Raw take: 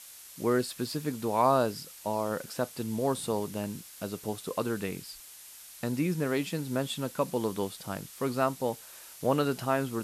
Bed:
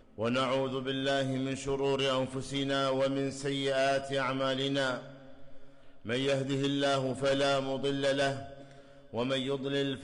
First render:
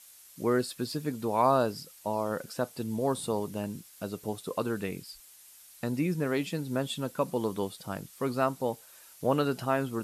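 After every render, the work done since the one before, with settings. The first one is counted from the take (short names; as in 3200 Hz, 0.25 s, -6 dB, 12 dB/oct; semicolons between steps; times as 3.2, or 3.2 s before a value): denoiser 7 dB, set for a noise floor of -49 dBFS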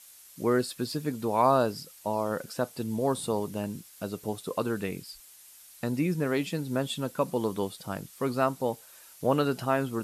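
gain +1.5 dB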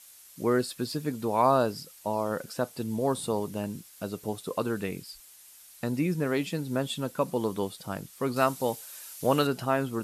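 8.36–9.47 high shelf 2000 Hz +8.5 dB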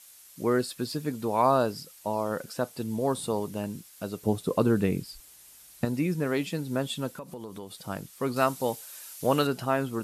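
4.26–5.85 low shelf 480 Hz +10.5 dB; 7.17–7.71 compressor 5:1, threshold -37 dBFS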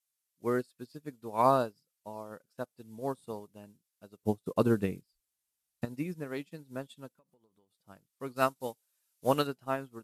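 upward expander 2.5:1, over -42 dBFS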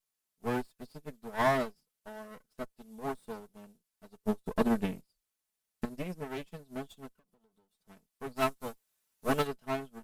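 minimum comb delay 4.6 ms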